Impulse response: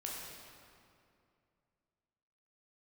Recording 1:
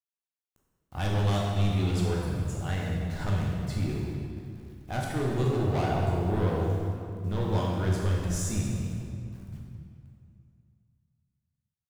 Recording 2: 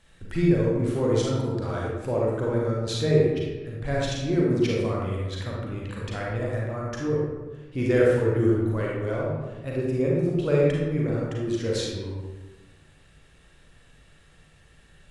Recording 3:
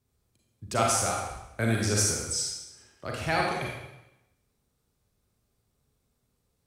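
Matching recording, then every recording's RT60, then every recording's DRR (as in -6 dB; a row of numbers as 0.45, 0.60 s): 1; 2.5, 1.3, 0.90 s; -3.5, -4.0, -2.0 dB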